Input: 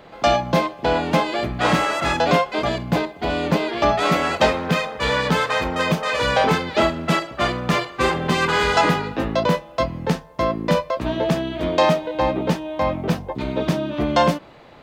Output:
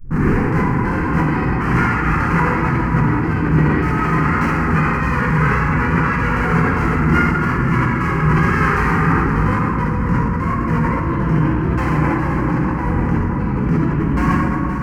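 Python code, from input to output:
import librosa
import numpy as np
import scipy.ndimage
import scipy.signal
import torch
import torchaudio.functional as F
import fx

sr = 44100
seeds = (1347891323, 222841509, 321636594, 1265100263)

y = fx.tape_start_head(x, sr, length_s=0.45)
y = scipy.signal.sosfilt(scipy.signal.butter(2, 5600.0, 'lowpass', fs=sr, output='sos'), y)
y = fx.bass_treble(y, sr, bass_db=8, treble_db=-12)
y = fx.wow_flutter(y, sr, seeds[0], rate_hz=2.1, depth_cents=130.0)
y = np.clip(10.0 ** (14.5 / 20.0) * y, -1.0, 1.0) / 10.0 ** (14.5 / 20.0)
y = fx.fixed_phaser(y, sr, hz=1500.0, stages=4)
y = y + 10.0 ** (-11.0 / 20.0) * np.pad(y, (int(522 * sr / 1000.0), 0))[:len(y)]
y = fx.rev_plate(y, sr, seeds[1], rt60_s=3.6, hf_ratio=0.4, predelay_ms=0, drr_db=-6.5)
y = fx.sustainer(y, sr, db_per_s=21.0)
y = F.gain(torch.from_numpy(y), -2.5).numpy()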